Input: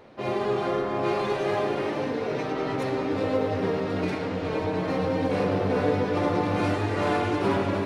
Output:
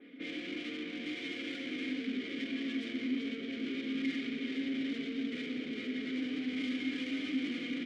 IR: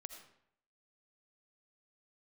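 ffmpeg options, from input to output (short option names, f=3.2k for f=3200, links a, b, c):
-filter_complex "[0:a]aecho=1:1:3.6:0.49,alimiter=limit=-16dB:level=0:latency=1:release=216,asplit=2[a][b];[b]highpass=f=720:p=1,volume=18dB,asoftclip=type=tanh:threshold=-3dB[c];[a][c]amix=inputs=2:normalize=0,lowpass=f=7.3k:p=1,volume=-6dB,asoftclip=type=tanh:threshold=-26dB,asetrate=38170,aresample=44100,atempo=1.15535,asplit=3[d][e][f];[d]bandpass=f=270:t=q:w=8,volume=0dB[g];[e]bandpass=f=2.29k:t=q:w=8,volume=-6dB[h];[f]bandpass=f=3.01k:t=q:w=8,volume=-9dB[i];[g][h][i]amix=inputs=3:normalize=0,adynamicequalizer=threshold=0.00112:dfrequency=3000:dqfactor=0.7:tfrequency=3000:tqfactor=0.7:attack=5:release=100:ratio=0.375:range=3.5:mode=boostabove:tftype=highshelf,volume=1.5dB"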